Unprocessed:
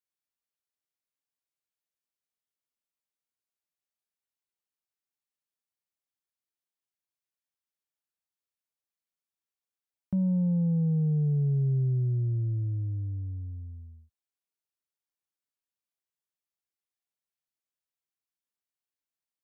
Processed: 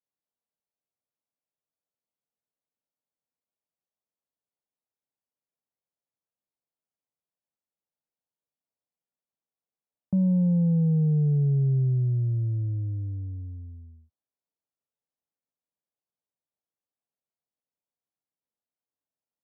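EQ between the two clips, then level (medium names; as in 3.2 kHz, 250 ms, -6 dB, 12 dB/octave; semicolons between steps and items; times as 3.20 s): high-pass 98 Hz; Chebyshev low-pass 680 Hz, order 2; peaking EQ 360 Hz -6 dB 0.25 oct; +5.0 dB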